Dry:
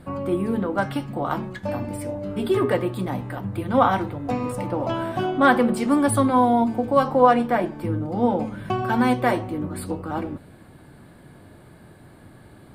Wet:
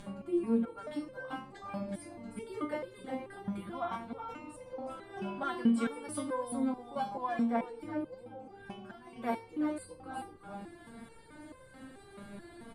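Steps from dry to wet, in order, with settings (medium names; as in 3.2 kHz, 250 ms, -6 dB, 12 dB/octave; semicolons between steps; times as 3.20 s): low-pass 11 kHz 24 dB/octave; upward compressor, threshold -22 dBFS; 3.95–5.10 s: AM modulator 83 Hz, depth 35%; 8.14–9.16 s: compression 12:1, threshold -28 dBFS, peak gain reduction 14.5 dB; on a send: delay 370 ms -7 dB; on the sum: resonator arpeggio 4.6 Hz 200–520 Hz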